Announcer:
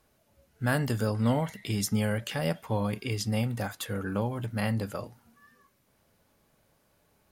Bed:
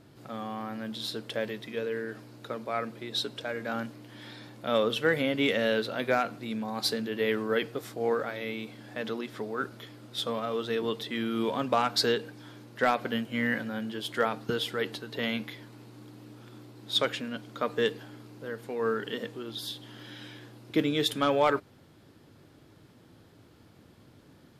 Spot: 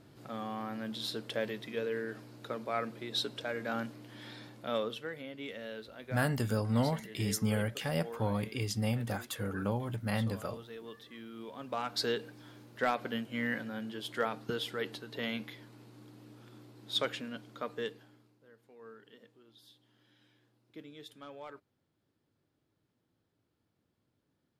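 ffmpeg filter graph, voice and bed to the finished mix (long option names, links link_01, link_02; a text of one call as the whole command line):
ffmpeg -i stem1.wav -i stem2.wav -filter_complex "[0:a]adelay=5500,volume=-3.5dB[link_01];[1:a]volume=8.5dB,afade=type=out:start_time=4.39:duration=0.7:silence=0.199526,afade=type=in:start_time=11.53:duration=0.64:silence=0.281838,afade=type=out:start_time=17.26:duration=1.13:silence=0.133352[link_02];[link_01][link_02]amix=inputs=2:normalize=0" out.wav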